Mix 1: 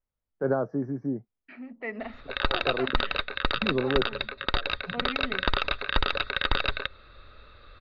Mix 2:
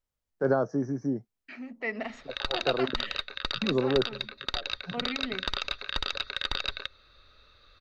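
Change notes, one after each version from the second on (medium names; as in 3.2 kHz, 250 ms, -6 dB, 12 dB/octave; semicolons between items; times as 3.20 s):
background -10.5 dB; master: remove distance through air 360 m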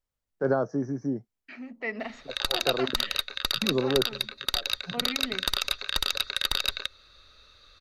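background: remove distance through air 180 m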